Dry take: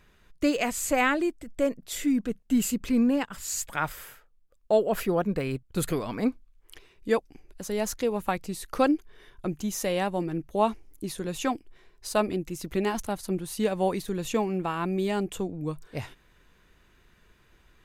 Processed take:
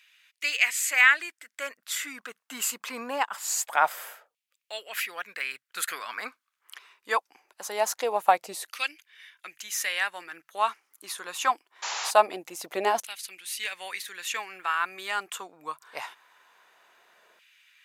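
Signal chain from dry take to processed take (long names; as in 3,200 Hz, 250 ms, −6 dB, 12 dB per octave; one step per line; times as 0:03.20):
sound drawn into the spectrogram noise, 0:11.82–0:12.11, 280–7,400 Hz −37 dBFS
auto-filter high-pass saw down 0.23 Hz 610–2,600 Hz
level +3 dB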